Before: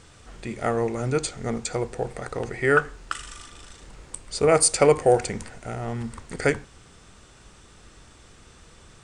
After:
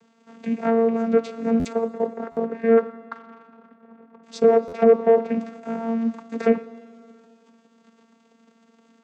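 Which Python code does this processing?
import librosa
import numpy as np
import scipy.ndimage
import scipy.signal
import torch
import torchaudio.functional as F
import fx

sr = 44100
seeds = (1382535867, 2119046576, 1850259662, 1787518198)

y = fx.env_lowpass_down(x, sr, base_hz=820.0, full_db=-14.5)
y = fx.lowpass(y, sr, hz=1600.0, slope=24, at=(1.72, 4.23))
y = fx.leveller(y, sr, passes=2)
y = fx.vocoder(y, sr, bands=16, carrier='saw', carrier_hz=228.0)
y = fx.rev_schroeder(y, sr, rt60_s=2.5, comb_ms=38, drr_db=17.5)
y = fx.buffer_glitch(y, sr, at_s=(1.59, 2.31, 4.67), block=512, repeats=4)
y = fx.doppler_dist(y, sr, depth_ms=0.12)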